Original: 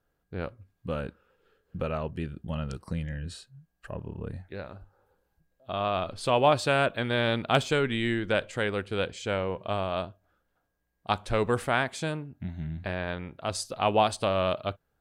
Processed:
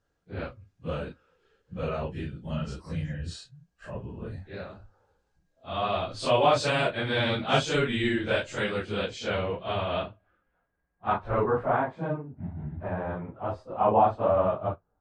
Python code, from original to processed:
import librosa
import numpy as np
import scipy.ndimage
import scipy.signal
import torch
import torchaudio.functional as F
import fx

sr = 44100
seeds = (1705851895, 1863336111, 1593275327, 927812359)

y = fx.phase_scramble(x, sr, seeds[0], window_ms=100)
y = fx.filter_sweep_lowpass(y, sr, from_hz=6500.0, to_hz=1000.0, start_s=8.85, end_s=11.64, q=1.5)